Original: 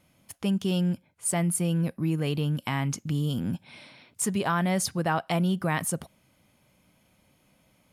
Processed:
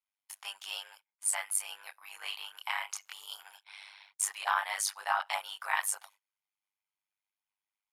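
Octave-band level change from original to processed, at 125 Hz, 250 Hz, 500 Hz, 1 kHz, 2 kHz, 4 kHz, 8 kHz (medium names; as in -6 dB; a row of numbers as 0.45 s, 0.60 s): under -40 dB, under -40 dB, -17.5 dB, -2.5 dB, -0.5 dB, -1.0 dB, -1.5 dB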